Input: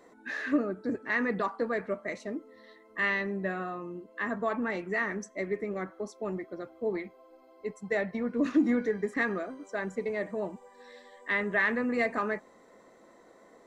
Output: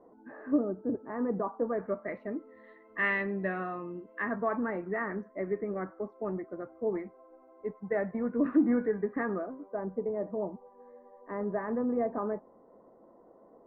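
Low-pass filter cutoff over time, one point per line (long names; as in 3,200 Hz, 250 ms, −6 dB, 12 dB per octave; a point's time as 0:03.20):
low-pass filter 24 dB per octave
0:01.59 1,000 Hz
0:02.07 1,800 Hz
0:03.22 2,800 Hz
0:03.92 2,800 Hz
0:04.68 1,600 Hz
0:08.99 1,600 Hz
0:09.84 1,000 Hz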